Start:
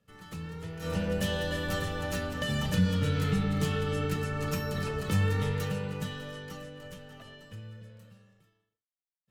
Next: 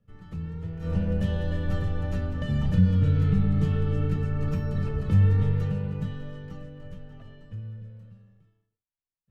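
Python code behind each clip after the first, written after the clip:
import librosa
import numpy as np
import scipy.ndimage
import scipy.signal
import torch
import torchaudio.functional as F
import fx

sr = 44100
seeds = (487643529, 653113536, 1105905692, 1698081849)

y = fx.riaa(x, sr, side='playback')
y = y * librosa.db_to_amplitude(-5.0)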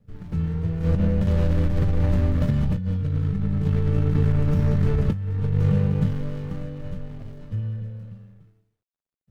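y = scipy.signal.medfilt(x, 41)
y = fx.over_compress(y, sr, threshold_db=-27.0, ratio=-1.0)
y = y * librosa.db_to_amplitude(6.5)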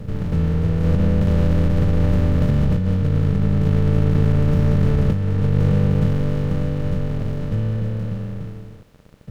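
y = fx.bin_compress(x, sr, power=0.4)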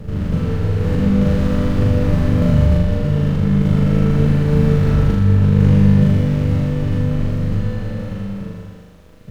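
y = fx.room_flutter(x, sr, wall_m=6.9, rt60_s=1.2)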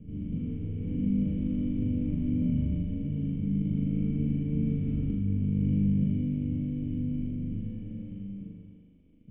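y = fx.formant_cascade(x, sr, vowel='i')
y = fx.air_absorb(y, sr, metres=270.0)
y = y * librosa.db_to_amplitude(-4.5)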